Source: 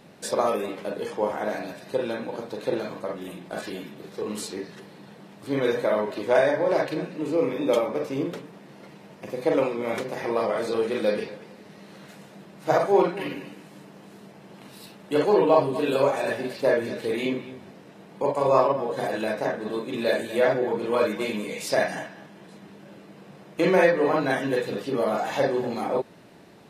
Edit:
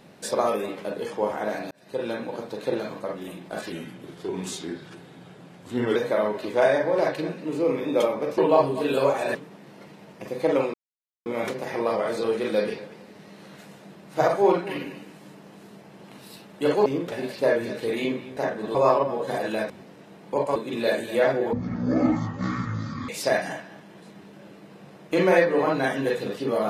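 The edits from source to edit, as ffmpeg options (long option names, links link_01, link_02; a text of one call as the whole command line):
ffmpeg -i in.wav -filter_complex "[0:a]asplit=15[link_01][link_02][link_03][link_04][link_05][link_06][link_07][link_08][link_09][link_10][link_11][link_12][link_13][link_14][link_15];[link_01]atrim=end=1.71,asetpts=PTS-STARTPTS,afade=type=out:start_time=1.706:duration=0.004:curve=hsin[link_16];[link_02]atrim=start=1.71:end=3.724,asetpts=PTS-STARTPTS,afade=type=in:duration=0.38[link_17];[link_03]atrim=start=3.72:end=5.69,asetpts=PTS-STARTPTS,asetrate=38808,aresample=44100[link_18];[link_04]atrim=start=5.686:end=8.112[link_19];[link_05]atrim=start=15.358:end=16.332[link_20];[link_06]atrim=start=8.368:end=9.76,asetpts=PTS-STARTPTS,afade=type=out:start_time=1.388:duration=0.004:curve=hsin,apad=pad_dur=0.52[link_21];[link_07]atrim=start=9.76:end=15.362,asetpts=PTS-STARTPTS,afade=type=in:duration=0.004:curve=hsin[link_22];[link_08]atrim=start=8.108:end=8.372[link_23];[link_09]atrim=start=16.328:end=17.582[link_24];[link_10]atrim=start=19.388:end=19.772[link_25];[link_11]atrim=start=18.438:end=19.392[link_26];[link_12]atrim=start=17.578:end=18.442[link_27];[link_13]atrim=start=19.768:end=20.744[link_28];[link_14]atrim=start=20.74:end=21.55,asetpts=PTS-STARTPTS,asetrate=22932,aresample=44100,atrim=end_sample=68694,asetpts=PTS-STARTPTS[link_29];[link_15]atrim=start=21.546[link_30];[link_16][link_17]concat=n=2:v=0:a=1[link_31];[link_31][link_18]acrossfade=duration=0.004:curve1=hsin:curve2=hsin[link_32];[link_32][link_19]acrossfade=duration=0.004:curve1=hsin:curve2=hsin[link_33];[link_33][link_20]acrossfade=duration=0.004:curve1=hsin:curve2=hsin[link_34];[link_21][link_22]concat=n=2:v=0:a=1[link_35];[link_34][link_35]acrossfade=duration=0.004:curve1=hsin:curve2=hsin[link_36];[link_36][link_23]acrossfade=duration=0.004:curve1=hsin:curve2=hsin[link_37];[link_37][link_24]acrossfade=duration=0.004:curve1=hsin:curve2=hsin[link_38];[link_38][link_25]acrossfade=duration=0.004:curve1=hsin:curve2=hsin[link_39];[link_39][link_26]acrossfade=duration=0.004:curve1=hsin:curve2=hsin[link_40];[link_40][link_27]acrossfade=duration=0.004:curve1=hsin:curve2=hsin[link_41];[link_41][link_28]acrossfade=duration=0.004:curve1=hsin:curve2=hsin[link_42];[link_42][link_29]acrossfade=duration=0.004:curve1=hsin:curve2=hsin[link_43];[link_43][link_30]acrossfade=duration=0.004:curve1=hsin:curve2=hsin" out.wav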